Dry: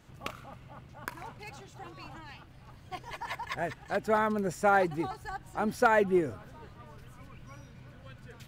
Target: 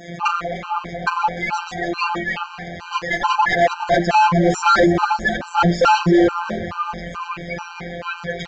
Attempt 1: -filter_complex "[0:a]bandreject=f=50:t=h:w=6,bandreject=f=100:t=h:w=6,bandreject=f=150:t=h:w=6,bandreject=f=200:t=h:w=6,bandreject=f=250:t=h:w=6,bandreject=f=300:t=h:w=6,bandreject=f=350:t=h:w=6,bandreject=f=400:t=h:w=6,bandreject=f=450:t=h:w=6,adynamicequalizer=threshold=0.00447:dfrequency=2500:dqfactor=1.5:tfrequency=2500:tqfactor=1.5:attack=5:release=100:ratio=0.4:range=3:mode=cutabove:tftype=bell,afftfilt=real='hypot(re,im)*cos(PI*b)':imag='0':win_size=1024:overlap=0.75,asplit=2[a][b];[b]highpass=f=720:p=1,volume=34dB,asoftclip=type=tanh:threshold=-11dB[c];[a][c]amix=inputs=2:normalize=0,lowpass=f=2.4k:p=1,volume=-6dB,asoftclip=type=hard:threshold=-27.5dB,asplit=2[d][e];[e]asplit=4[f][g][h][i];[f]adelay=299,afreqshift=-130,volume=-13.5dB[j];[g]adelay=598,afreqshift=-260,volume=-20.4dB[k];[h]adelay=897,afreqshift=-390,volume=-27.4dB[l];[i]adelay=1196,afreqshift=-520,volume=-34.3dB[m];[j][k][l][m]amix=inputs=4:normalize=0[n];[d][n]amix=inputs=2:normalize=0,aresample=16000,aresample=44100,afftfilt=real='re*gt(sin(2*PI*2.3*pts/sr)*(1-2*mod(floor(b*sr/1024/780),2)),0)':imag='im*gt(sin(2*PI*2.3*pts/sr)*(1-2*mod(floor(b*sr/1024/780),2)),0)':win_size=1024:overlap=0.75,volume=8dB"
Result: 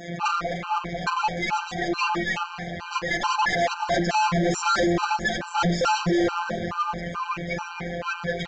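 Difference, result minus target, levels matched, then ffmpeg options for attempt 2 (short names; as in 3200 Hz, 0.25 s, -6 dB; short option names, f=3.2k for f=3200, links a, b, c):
hard clip: distortion +12 dB
-filter_complex "[0:a]bandreject=f=50:t=h:w=6,bandreject=f=100:t=h:w=6,bandreject=f=150:t=h:w=6,bandreject=f=200:t=h:w=6,bandreject=f=250:t=h:w=6,bandreject=f=300:t=h:w=6,bandreject=f=350:t=h:w=6,bandreject=f=400:t=h:w=6,bandreject=f=450:t=h:w=6,adynamicequalizer=threshold=0.00447:dfrequency=2500:dqfactor=1.5:tfrequency=2500:tqfactor=1.5:attack=5:release=100:ratio=0.4:range=3:mode=cutabove:tftype=bell,afftfilt=real='hypot(re,im)*cos(PI*b)':imag='0':win_size=1024:overlap=0.75,asplit=2[a][b];[b]highpass=f=720:p=1,volume=34dB,asoftclip=type=tanh:threshold=-11dB[c];[a][c]amix=inputs=2:normalize=0,lowpass=f=2.4k:p=1,volume=-6dB,asoftclip=type=hard:threshold=-18.5dB,asplit=2[d][e];[e]asplit=4[f][g][h][i];[f]adelay=299,afreqshift=-130,volume=-13.5dB[j];[g]adelay=598,afreqshift=-260,volume=-20.4dB[k];[h]adelay=897,afreqshift=-390,volume=-27.4dB[l];[i]adelay=1196,afreqshift=-520,volume=-34.3dB[m];[j][k][l][m]amix=inputs=4:normalize=0[n];[d][n]amix=inputs=2:normalize=0,aresample=16000,aresample=44100,afftfilt=real='re*gt(sin(2*PI*2.3*pts/sr)*(1-2*mod(floor(b*sr/1024/780),2)),0)':imag='im*gt(sin(2*PI*2.3*pts/sr)*(1-2*mod(floor(b*sr/1024/780),2)),0)':win_size=1024:overlap=0.75,volume=8dB"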